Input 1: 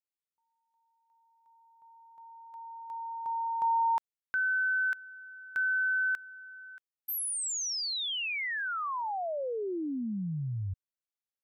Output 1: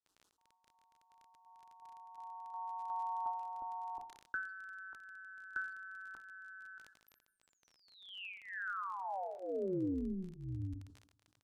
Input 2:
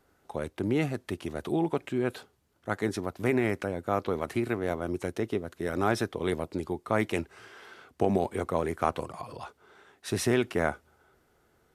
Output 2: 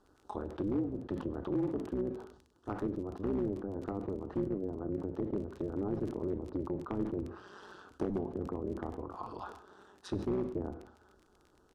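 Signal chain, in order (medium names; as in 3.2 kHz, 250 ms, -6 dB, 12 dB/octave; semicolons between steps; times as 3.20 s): peaking EQ 1.6 kHz -3 dB 2.9 oct; static phaser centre 580 Hz, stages 6; AM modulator 190 Hz, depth 60%; in parallel at +2 dB: compression 6:1, threshold -46 dBFS; on the sum: low-pass that closes with the level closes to 430 Hz, closed at -31.5 dBFS; hard clipper -26 dBFS; treble shelf 6 kHz -8 dB; speakerphone echo 150 ms, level -24 dB; two-slope reverb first 0.47 s, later 1.9 s, from -25 dB, DRR 12.5 dB; crackle 30 per s -48 dBFS; Bessel low-pass 8.4 kHz, order 2; decay stretcher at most 88 dB/s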